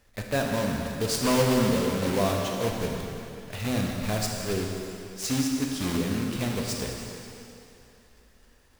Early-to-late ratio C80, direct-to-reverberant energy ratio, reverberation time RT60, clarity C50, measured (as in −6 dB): 2.5 dB, 0.0 dB, 2.8 s, 1.5 dB